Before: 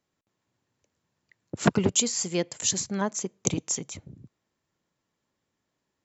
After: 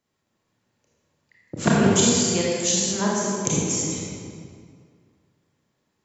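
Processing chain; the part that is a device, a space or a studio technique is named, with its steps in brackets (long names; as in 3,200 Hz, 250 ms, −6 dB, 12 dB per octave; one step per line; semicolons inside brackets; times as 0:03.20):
stairwell (convolution reverb RT60 2.1 s, pre-delay 25 ms, DRR −5.5 dB)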